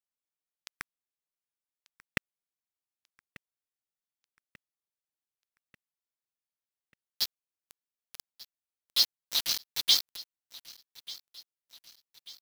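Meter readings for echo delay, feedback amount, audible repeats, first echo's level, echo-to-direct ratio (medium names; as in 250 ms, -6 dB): 1190 ms, 50%, 3, -19.5 dB, -18.5 dB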